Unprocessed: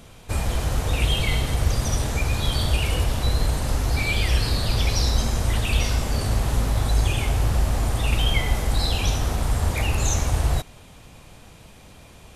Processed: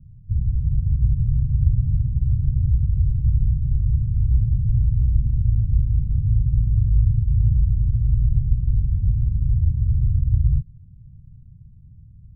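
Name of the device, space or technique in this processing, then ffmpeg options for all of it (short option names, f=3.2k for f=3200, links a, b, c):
the neighbour's flat through the wall: -af "lowpass=f=150:w=0.5412,lowpass=f=150:w=1.3066,equalizer=f=120:t=o:w=0.96:g=6,volume=2dB"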